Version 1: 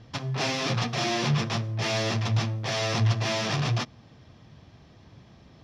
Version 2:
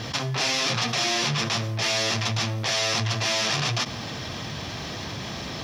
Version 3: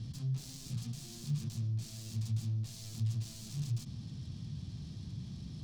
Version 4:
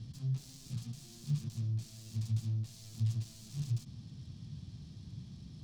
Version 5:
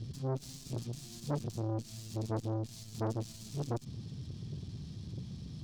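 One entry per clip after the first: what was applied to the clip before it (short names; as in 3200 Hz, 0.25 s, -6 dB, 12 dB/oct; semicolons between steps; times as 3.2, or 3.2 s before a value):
tilt +2.5 dB/oct; fast leveller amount 70%
self-modulated delay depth 0.25 ms; EQ curve 170 Hz 0 dB, 550 Hz -27 dB, 2000 Hz -29 dB, 4400 Hz -15 dB, 7500 Hz -19 dB, 14000 Hz -26 dB; gain -4.5 dB
upward expander 1.5:1, over -44 dBFS; gain +2 dB
in parallel at -7 dB: one-sided clip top -44.5 dBFS, bottom -27.5 dBFS; on the sum: core saturation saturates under 590 Hz; gain +2.5 dB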